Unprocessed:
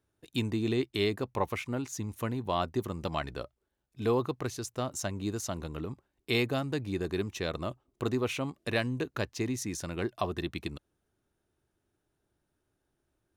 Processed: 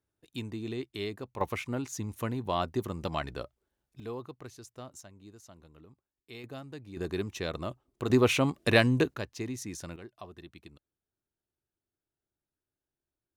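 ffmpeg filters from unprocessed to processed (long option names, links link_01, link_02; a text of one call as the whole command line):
ffmpeg -i in.wav -af "asetnsamples=nb_out_samples=441:pad=0,asendcmd='1.41 volume volume 0dB;4 volume volume -11.5dB;5.01 volume volume -18dB;6.44 volume volume -11.5dB;6.97 volume volume -1dB;8.1 volume volume 7.5dB;9.14 volume volume -4dB;9.96 volume volume -14.5dB',volume=-7dB" out.wav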